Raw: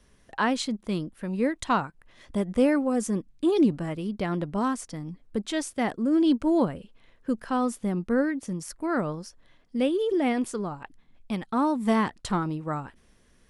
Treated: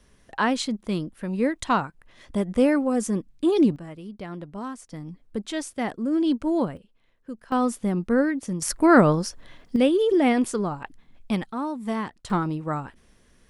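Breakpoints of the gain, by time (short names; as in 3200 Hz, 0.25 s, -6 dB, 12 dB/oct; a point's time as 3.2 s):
+2 dB
from 3.76 s -7.5 dB
from 4.92 s -1 dB
from 6.77 s -9 dB
from 7.52 s +3 dB
from 8.62 s +12 dB
from 9.76 s +5 dB
from 11.52 s -5 dB
from 12.3 s +2.5 dB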